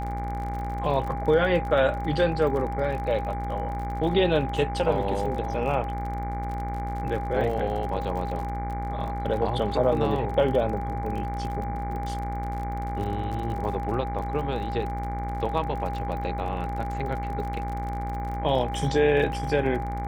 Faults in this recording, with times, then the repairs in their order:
buzz 60 Hz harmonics 39 -32 dBFS
crackle 41/s -33 dBFS
tone 810 Hz -32 dBFS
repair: de-click; notch 810 Hz, Q 30; de-hum 60 Hz, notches 39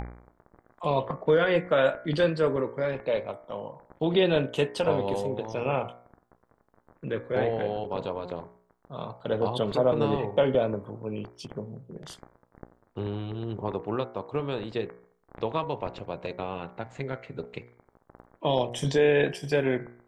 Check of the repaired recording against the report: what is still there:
none

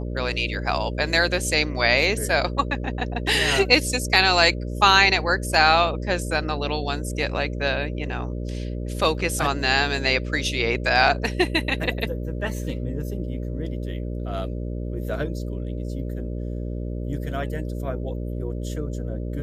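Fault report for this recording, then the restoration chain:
buzz 60 Hz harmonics 10 -29 dBFS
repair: de-hum 60 Hz, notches 10

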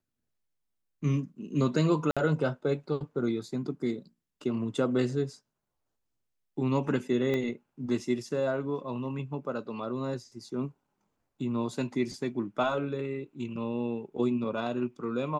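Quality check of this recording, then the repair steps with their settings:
2.11–2.17 gap 56 ms
7.34 pop -19 dBFS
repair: de-click; interpolate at 2.11, 56 ms

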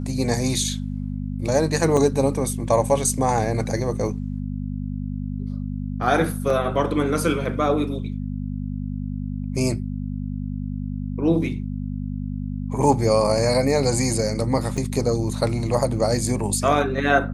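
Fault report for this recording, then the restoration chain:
hum 50 Hz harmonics 5 -28 dBFS
1.97 gap 4.6 ms
6.5 gap 2.7 ms
14.77–14.78 gap 5.6 ms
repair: de-hum 50 Hz, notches 5; interpolate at 1.97, 4.6 ms; interpolate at 6.5, 2.7 ms; interpolate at 14.77, 5.6 ms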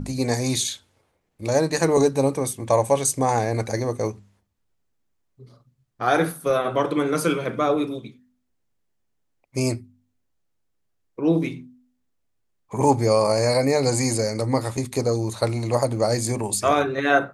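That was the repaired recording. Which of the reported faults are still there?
none

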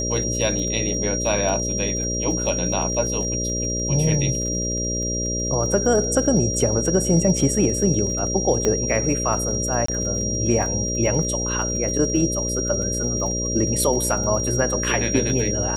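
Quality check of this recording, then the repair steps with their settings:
buzz 60 Hz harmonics 10 -27 dBFS
crackle 40/s -30 dBFS
tone 5700 Hz -25 dBFS
8.65 pop -8 dBFS
9.86–9.88 gap 24 ms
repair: de-click; de-hum 60 Hz, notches 10; notch 5700 Hz, Q 30; interpolate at 9.86, 24 ms

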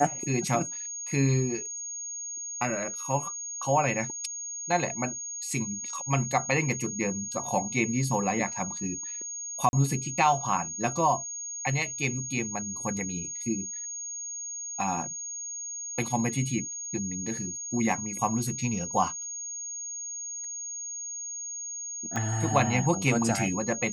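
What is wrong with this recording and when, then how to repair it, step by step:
tone 6600 Hz -34 dBFS
9.69–9.73 gap 41 ms
22.16 pop -18 dBFS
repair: de-click; notch 6600 Hz, Q 30; interpolate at 9.69, 41 ms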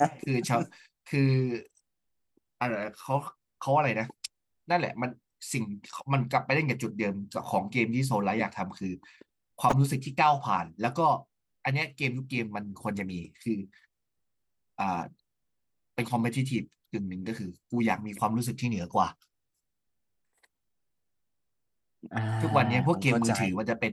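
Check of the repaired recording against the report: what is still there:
none

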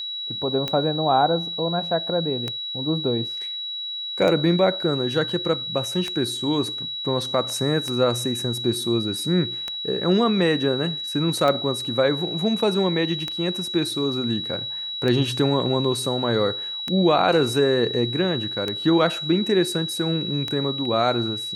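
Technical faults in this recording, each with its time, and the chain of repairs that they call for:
tick 33 1/3 rpm -12 dBFS
tone 3900 Hz -28 dBFS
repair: de-click; notch 3900 Hz, Q 30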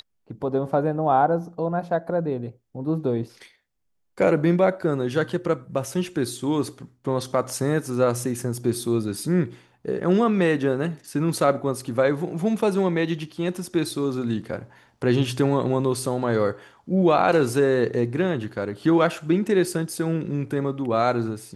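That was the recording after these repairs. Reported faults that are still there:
none

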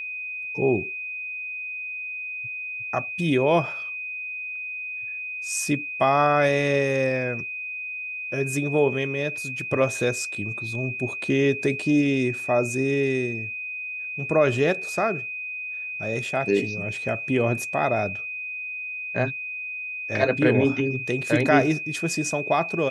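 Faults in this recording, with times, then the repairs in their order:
tone 2500 Hz -30 dBFS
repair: notch 2500 Hz, Q 30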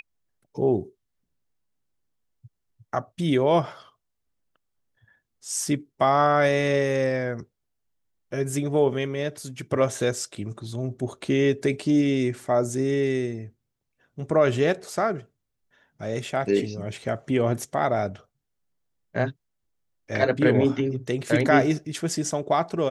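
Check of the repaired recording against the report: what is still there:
none

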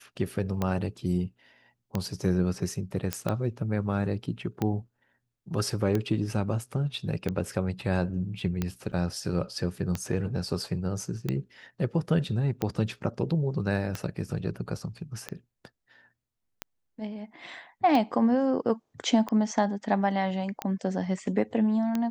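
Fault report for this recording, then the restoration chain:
tick 45 rpm -15 dBFS
3.13 pop -11 dBFS
8.92–8.93 gap 7.7 ms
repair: de-click; interpolate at 8.92, 7.7 ms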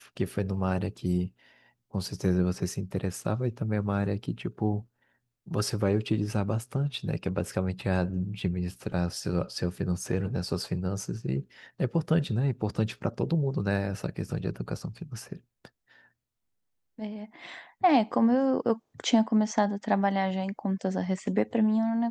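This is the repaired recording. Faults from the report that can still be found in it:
none

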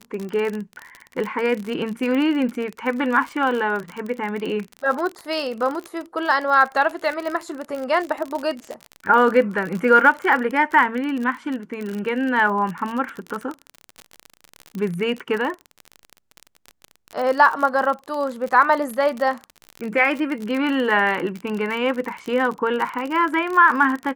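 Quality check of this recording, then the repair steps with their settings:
crackle 45/s -25 dBFS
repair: de-click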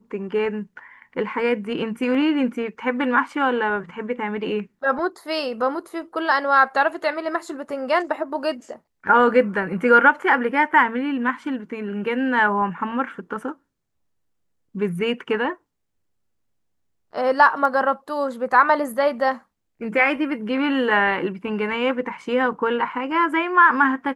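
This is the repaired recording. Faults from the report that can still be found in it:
none

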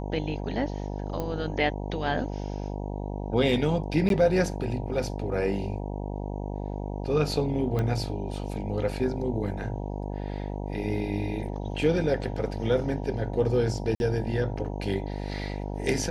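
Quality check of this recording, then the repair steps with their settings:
buzz 50 Hz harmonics 19 -33 dBFS
1.2 pop -18 dBFS
4.09–4.1 gap 12 ms
7.79 pop -17 dBFS
13.95–14 gap 51 ms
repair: de-click; de-hum 50 Hz, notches 19; interpolate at 4.09, 12 ms; interpolate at 13.95, 51 ms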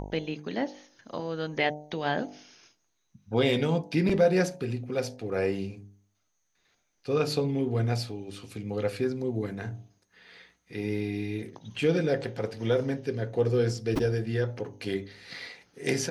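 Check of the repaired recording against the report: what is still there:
7.79 pop

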